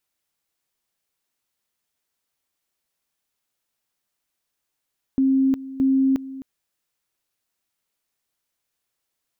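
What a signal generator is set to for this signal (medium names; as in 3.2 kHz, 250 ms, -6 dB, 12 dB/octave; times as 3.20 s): two-level tone 267 Hz -15 dBFS, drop 16.5 dB, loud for 0.36 s, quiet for 0.26 s, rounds 2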